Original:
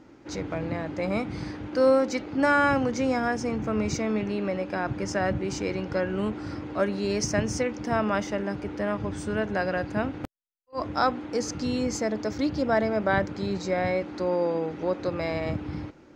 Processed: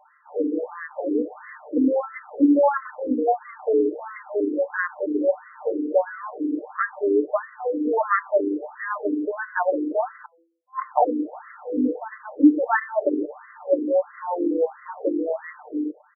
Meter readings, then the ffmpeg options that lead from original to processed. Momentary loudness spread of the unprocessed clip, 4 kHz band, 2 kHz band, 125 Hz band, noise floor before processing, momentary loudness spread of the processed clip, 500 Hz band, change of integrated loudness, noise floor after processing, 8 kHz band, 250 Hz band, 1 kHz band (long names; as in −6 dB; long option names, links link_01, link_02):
8 LU, below −40 dB, −0.5 dB, below −25 dB, −52 dBFS, 11 LU, +3.5 dB, +3.0 dB, −56 dBFS, below −40 dB, +4.5 dB, +3.0 dB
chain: -filter_complex "[0:a]aecho=1:1:6.7:0.91,bandreject=frequency=166.6:width_type=h:width=4,bandreject=frequency=333.2:width_type=h:width=4,bandreject=frequency=499.8:width_type=h:width=4,bandreject=frequency=666.4:width_type=h:width=4,bandreject=frequency=833:width_type=h:width=4,bandreject=frequency=999.6:width_type=h:width=4,bandreject=frequency=1166.2:width_type=h:width=4,bandreject=frequency=1332.8:width_type=h:width=4,bandreject=frequency=1499.4:width_type=h:width=4,acrossover=split=110|1000|1500[link_01][link_02][link_03][link_04];[link_03]acrusher=bits=4:mix=0:aa=0.000001[link_05];[link_01][link_02][link_05][link_04]amix=inputs=4:normalize=0,afftfilt=real='re*between(b*sr/1024,330*pow(1500/330,0.5+0.5*sin(2*PI*1.5*pts/sr))/1.41,330*pow(1500/330,0.5+0.5*sin(2*PI*1.5*pts/sr))*1.41)':imag='im*between(b*sr/1024,330*pow(1500/330,0.5+0.5*sin(2*PI*1.5*pts/sr))/1.41,330*pow(1500/330,0.5+0.5*sin(2*PI*1.5*pts/sr))*1.41)':win_size=1024:overlap=0.75,volume=8.5dB"